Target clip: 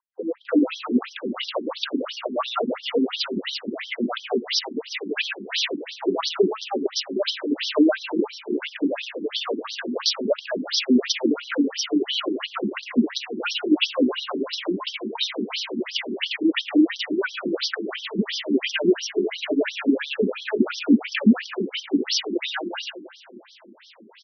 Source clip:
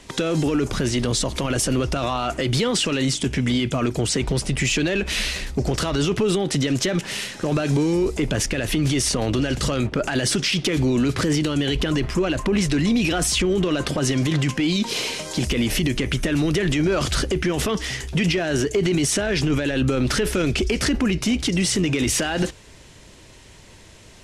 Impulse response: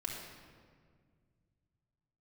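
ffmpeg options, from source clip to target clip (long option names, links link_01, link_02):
-filter_complex "[0:a]highshelf=frequency=5400:gain=-4,flanger=delay=1.8:depth=4.8:regen=-10:speed=1.3:shape=triangular,asettb=1/sr,asplit=3[link_01][link_02][link_03];[link_01]atrim=end=9.044[link_04];[link_02]atrim=start=9.04:end=9.74,asetpts=PTS-STARTPTS,afade=type=in:duration=0.004:curve=qsin,afade=type=out:start_time=0.696:duration=0.004:curve=qsin,bass=frequency=250:gain=-13,treble=frequency=4000:gain=8[link_05];[link_03]atrim=start=9.736[link_06];[link_04][link_05]acrossfade=duration=0.004:curve1=hsin:curve2=qsin[link_07];[link_07][link_06]acrossfade=duration=0.004:curve1=qsin:curve2=hsin,acrossover=split=440|2100[link_08][link_09][link_10];[link_09]adelay=310[link_11];[link_10]adelay=450[link_12];[link_08][link_11][link_12]amix=inputs=3:normalize=0,asplit=2[link_13][link_14];[1:a]atrim=start_sample=2205,asetrate=28665,aresample=44100[link_15];[link_14][link_15]afir=irnorm=-1:irlink=0,volume=-11dB[link_16];[link_13][link_16]amix=inputs=2:normalize=0,afftfilt=real='re*between(b*sr/1024,270*pow(4400/270,0.5+0.5*sin(2*PI*2.9*pts/sr))/1.41,270*pow(4400/270,0.5+0.5*sin(2*PI*2.9*pts/sr))*1.41)':imag='im*between(b*sr/1024,270*pow(4400/270,0.5+0.5*sin(2*PI*2.9*pts/sr))/1.41,270*pow(4400/270,0.5+0.5*sin(2*PI*2.9*pts/sr))*1.41)':win_size=1024:overlap=0.75,volume=8.5dB"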